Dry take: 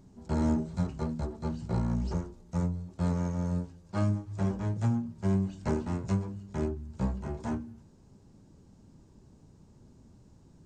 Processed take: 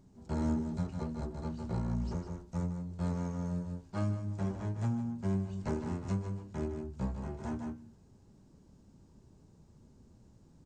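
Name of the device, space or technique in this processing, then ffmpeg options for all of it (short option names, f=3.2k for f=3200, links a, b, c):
ducked delay: -filter_complex "[0:a]asplit=3[a][b][c];[b]adelay=153,volume=-3dB[d];[c]apad=whole_len=476738[e];[d][e]sidechaincompress=threshold=-34dB:ratio=8:attack=9.6:release=218[f];[a][f]amix=inputs=2:normalize=0,volume=-5dB"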